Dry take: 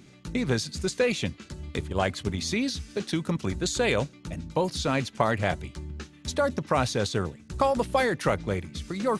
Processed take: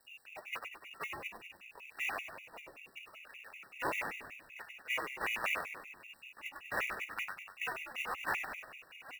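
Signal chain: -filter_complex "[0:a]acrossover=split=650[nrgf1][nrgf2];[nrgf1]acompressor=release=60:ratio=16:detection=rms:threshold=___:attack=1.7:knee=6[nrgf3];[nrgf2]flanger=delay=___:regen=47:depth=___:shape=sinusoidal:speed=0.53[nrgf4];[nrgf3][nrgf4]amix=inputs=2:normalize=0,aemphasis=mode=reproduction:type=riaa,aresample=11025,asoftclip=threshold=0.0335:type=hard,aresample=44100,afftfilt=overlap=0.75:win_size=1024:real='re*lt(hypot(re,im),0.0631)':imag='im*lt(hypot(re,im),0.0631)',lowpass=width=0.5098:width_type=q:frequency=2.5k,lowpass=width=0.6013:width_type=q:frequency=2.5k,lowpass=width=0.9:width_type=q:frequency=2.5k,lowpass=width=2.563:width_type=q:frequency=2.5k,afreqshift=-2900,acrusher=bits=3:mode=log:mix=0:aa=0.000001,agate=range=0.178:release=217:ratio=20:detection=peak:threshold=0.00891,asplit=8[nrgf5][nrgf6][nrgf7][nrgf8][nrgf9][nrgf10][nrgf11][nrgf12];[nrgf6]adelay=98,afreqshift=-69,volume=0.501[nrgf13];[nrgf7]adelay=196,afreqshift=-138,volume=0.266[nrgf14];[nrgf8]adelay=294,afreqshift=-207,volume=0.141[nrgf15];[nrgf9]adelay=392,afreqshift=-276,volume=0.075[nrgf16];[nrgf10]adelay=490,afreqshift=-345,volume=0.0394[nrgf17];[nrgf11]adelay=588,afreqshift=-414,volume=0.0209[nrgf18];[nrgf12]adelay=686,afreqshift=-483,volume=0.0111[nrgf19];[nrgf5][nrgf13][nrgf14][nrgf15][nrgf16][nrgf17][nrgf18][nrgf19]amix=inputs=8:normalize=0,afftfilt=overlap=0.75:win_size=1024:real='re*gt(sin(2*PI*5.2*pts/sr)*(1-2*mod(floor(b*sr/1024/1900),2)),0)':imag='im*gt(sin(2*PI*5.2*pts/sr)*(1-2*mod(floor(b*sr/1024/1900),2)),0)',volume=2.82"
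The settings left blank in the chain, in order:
0.0141, 7, 8.5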